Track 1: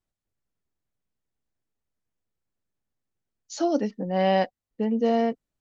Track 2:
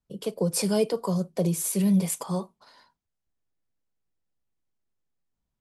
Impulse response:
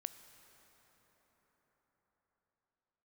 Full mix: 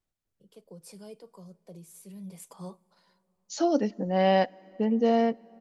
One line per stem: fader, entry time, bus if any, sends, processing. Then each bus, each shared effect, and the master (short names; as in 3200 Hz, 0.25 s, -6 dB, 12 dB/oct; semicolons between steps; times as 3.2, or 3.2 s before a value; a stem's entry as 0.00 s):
-2.0 dB, 0.00 s, send -10.5 dB, dry
2.18 s -23.5 dB -> 2.68 s -13 dB, 0.30 s, send -11.5 dB, dry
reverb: on, RT60 5.6 s, pre-delay 13 ms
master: dry